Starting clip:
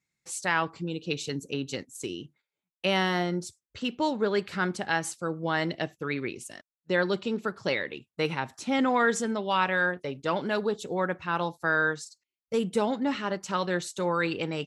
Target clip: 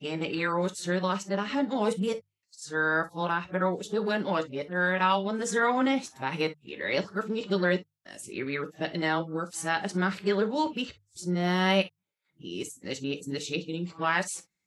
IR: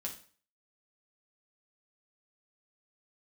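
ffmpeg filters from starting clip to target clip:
-filter_complex "[0:a]areverse,bandreject=f=50:t=h:w=6,bandreject=f=100:t=h:w=6,bandreject=f=150:t=h:w=6,asplit=2[a][b];[1:a]atrim=start_sample=2205,atrim=end_sample=3087[c];[b][c]afir=irnorm=-1:irlink=0,volume=0dB[d];[a][d]amix=inputs=2:normalize=0,volume=-5dB"

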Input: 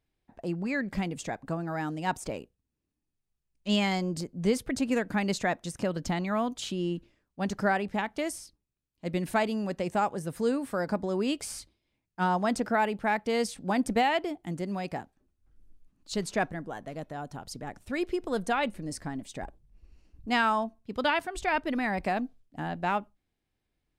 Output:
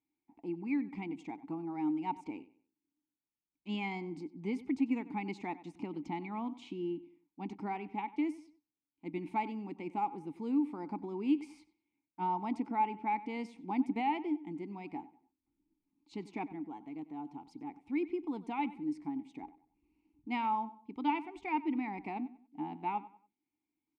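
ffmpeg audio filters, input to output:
-filter_complex "[0:a]asplit=3[a][b][c];[a]bandpass=f=300:t=q:w=8,volume=0dB[d];[b]bandpass=f=870:t=q:w=8,volume=-6dB[e];[c]bandpass=f=2.24k:t=q:w=8,volume=-9dB[f];[d][e][f]amix=inputs=3:normalize=0,asplit=2[g][h];[h]adelay=95,lowpass=f=4.3k:p=1,volume=-17dB,asplit=2[i][j];[j]adelay=95,lowpass=f=4.3k:p=1,volume=0.33,asplit=2[k][l];[l]adelay=95,lowpass=f=4.3k:p=1,volume=0.33[m];[g][i][k][m]amix=inputs=4:normalize=0,volume=4.5dB"

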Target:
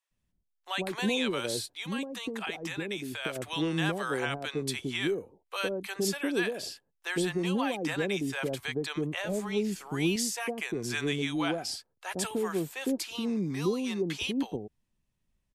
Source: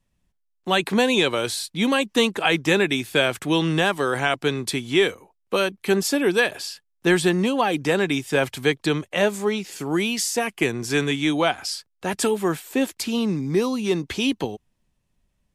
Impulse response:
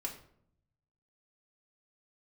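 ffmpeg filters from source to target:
-filter_complex "[0:a]asettb=1/sr,asplit=3[a][b][c];[a]atrim=end=9.094[d];[b]atrim=start=9.09:end=10.05,asetpts=PTS-STARTPTS,afade=t=in:d=0.004:c=qsin,afade=t=out:st=0.956:d=0.004:c=qsin,lowshelf=f=210:g=9.5[e];[c]atrim=start=10.046[f];[d][e]acrossfade=d=0.004:c1=hsin:c2=qsin[g];[g][f]acrossfade=d=0.004:c1=qsin:c2=hsin,alimiter=limit=-11.5dB:level=0:latency=1:release=142,asettb=1/sr,asplit=3[h][i][j];[h]atrim=end=1.614[k];[i]atrim=start=1.61:end=3.25,asetpts=PTS-STARTPTS,afade=t=in:d=0.004:c=qsin,afade=t=out:st=1.636:d=0.004:c=qsin,acompressor=threshold=-24dB:ratio=4[l];[j]atrim=start=3.246[m];[k][l]acrossfade=d=0.004:c1=hsin:c2=qsin[n];[n][m]acrossfade=d=0.004:c1=qsin:c2=hsin,acrossover=split=680[o][p];[o]adelay=110[q];[q][p]amix=inputs=2:normalize=0,volume=-7dB"

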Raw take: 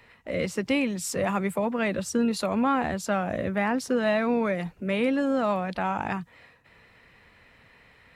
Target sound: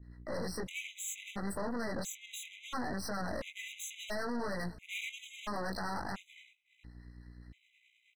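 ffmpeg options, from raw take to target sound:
-filter_complex "[0:a]agate=range=-33dB:threshold=-45dB:ratio=3:detection=peak,asetnsamples=n=441:p=0,asendcmd='3.1 equalizer g 14',equalizer=f=6k:w=0.31:g=5,alimiter=limit=-18.5dB:level=0:latency=1:release=254,flanger=delay=20:depth=2.2:speed=0.71,aeval=exprs='val(0)+0.00282*(sin(2*PI*60*n/s)+sin(2*PI*2*60*n/s)/2+sin(2*PI*3*60*n/s)/3+sin(2*PI*4*60*n/s)/4+sin(2*PI*5*60*n/s)/5)':c=same,acrossover=split=480[a][b];[a]aeval=exprs='val(0)*(1-0.5/2+0.5/2*cos(2*PI*9.6*n/s))':c=same[c];[b]aeval=exprs='val(0)*(1-0.5/2-0.5/2*cos(2*PI*9.6*n/s))':c=same[d];[c][d]amix=inputs=2:normalize=0,aeval=exprs='(tanh(126*val(0)+0.75)-tanh(0.75))/126':c=same,asplit=2[e][f];[f]adelay=287,lowpass=f=1.6k:p=1,volume=-23dB,asplit=2[g][h];[h]adelay=287,lowpass=f=1.6k:p=1,volume=0.5,asplit=2[i][j];[j]adelay=287,lowpass=f=1.6k:p=1,volume=0.5[k];[e][g][i][k]amix=inputs=4:normalize=0,afftfilt=real='re*gt(sin(2*PI*0.73*pts/sr)*(1-2*mod(floor(b*sr/1024/2000),2)),0)':imag='im*gt(sin(2*PI*0.73*pts/sr)*(1-2*mod(floor(b*sr/1024/2000),2)),0)':win_size=1024:overlap=0.75,volume=7.5dB"

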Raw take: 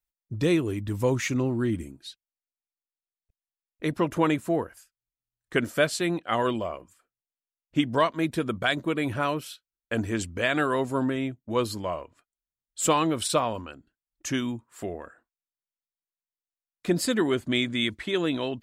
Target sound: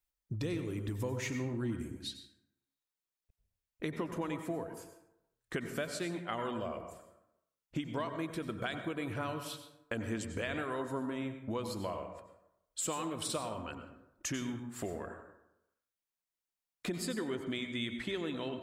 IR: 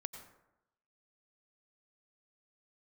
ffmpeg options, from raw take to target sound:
-filter_complex "[0:a]acompressor=threshold=-36dB:ratio=6[a];[1:a]atrim=start_sample=2205[b];[a][b]afir=irnorm=-1:irlink=0,volume=4dB"

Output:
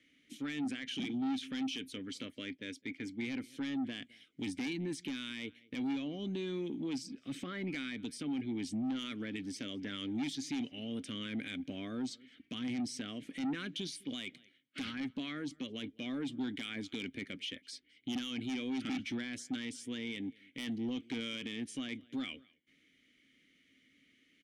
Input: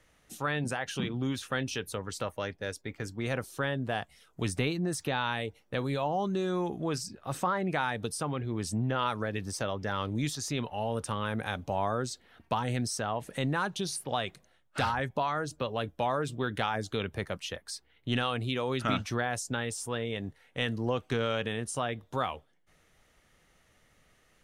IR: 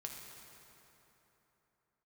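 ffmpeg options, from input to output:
-filter_complex "[0:a]asplit=3[a][b][c];[a]bandpass=f=270:t=q:w=8,volume=0dB[d];[b]bandpass=f=2.29k:t=q:w=8,volume=-6dB[e];[c]bandpass=f=3.01k:t=q:w=8,volume=-9dB[f];[d][e][f]amix=inputs=3:normalize=0,asplit=2[g][h];[h]adelay=209.9,volume=-27dB,highshelf=f=4k:g=-4.72[i];[g][i]amix=inputs=2:normalize=0,asoftclip=type=tanh:threshold=-38dB,highshelf=f=3.8k:g=8.5,alimiter=level_in=17dB:limit=-24dB:level=0:latency=1:release=21,volume=-17dB,volume=9.5dB"

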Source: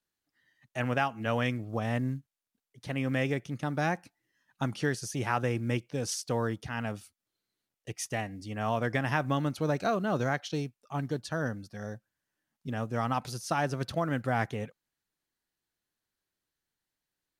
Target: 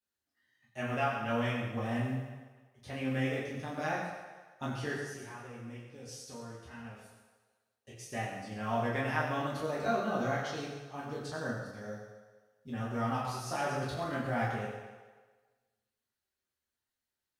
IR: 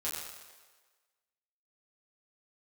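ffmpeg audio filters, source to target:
-filter_complex "[0:a]asplit=3[a][b][c];[a]afade=t=out:st=4.92:d=0.02[d];[b]acompressor=threshold=-42dB:ratio=4,afade=t=in:st=4.92:d=0.02,afade=t=out:st=8.06:d=0.02[e];[c]afade=t=in:st=8.06:d=0.02[f];[d][e][f]amix=inputs=3:normalize=0[g];[1:a]atrim=start_sample=2205[h];[g][h]afir=irnorm=-1:irlink=0,volume=-6dB"

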